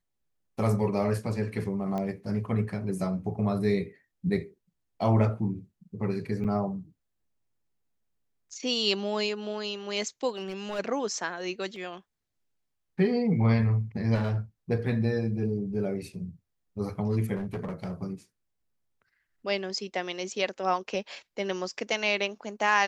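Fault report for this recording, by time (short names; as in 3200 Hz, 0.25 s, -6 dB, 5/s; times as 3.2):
1.98 pop -21 dBFS
6.44–6.45 gap 7 ms
10.29–10.8 clipped -28.5 dBFS
11.76 gap 2 ms
14.14–14.37 clipped -24 dBFS
17.35–17.93 clipped -29.5 dBFS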